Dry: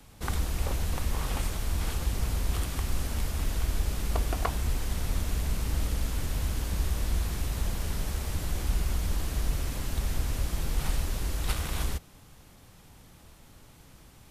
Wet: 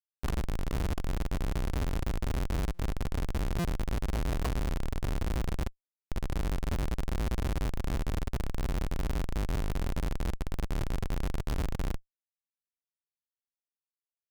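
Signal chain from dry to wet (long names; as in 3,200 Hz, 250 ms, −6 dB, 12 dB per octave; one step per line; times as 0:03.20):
0:05.68–0:06.09: flat-topped band-pass 250 Hz, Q 1.8
feedback delay with all-pass diffusion 699 ms, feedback 58%, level −12.5 dB
comparator with hysteresis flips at −26 dBFS
buffer that repeats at 0:02.74/0:03.59, samples 256, times 8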